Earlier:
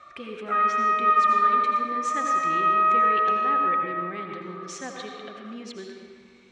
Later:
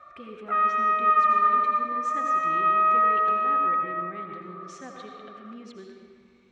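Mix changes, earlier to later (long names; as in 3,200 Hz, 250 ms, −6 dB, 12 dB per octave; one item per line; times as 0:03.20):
speech −7.0 dB
master: add spectral tilt −1.5 dB per octave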